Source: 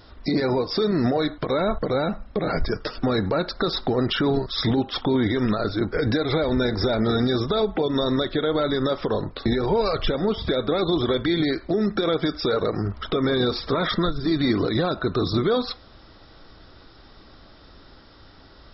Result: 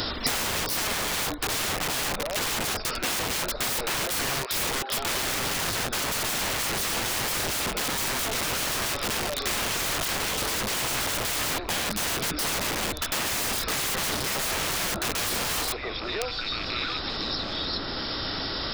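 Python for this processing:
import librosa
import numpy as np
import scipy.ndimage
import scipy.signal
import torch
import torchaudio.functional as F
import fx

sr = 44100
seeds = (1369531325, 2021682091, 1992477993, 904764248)

p1 = fx.rattle_buzz(x, sr, strikes_db=-28.0, level_db=-24.0)
p2 = fx.highpass(p1, sr, hz=460.0, slope=24, at=(4.03, 4.98))
p3 = p2 + fx.echo_stepped(p2, sr, ms=685, hz=720.0, octaves=1.4, feedback_pct=70, wet_db=-10.5, dry=0)
p4 = fx.transient(p3, sr, attack_db=-3, sustain_db=1)
p5 = (np.mod(10.0 ** (27.0 / 20.0) * p4 + 1.0, 2.0) - 1.0) / 10.0 ** (27.0 / 20.0)
p6 = fx.band_squash(p5, sr, depth_pct=100)
y = p6 * 10.0 ** (3.5 / 20.0)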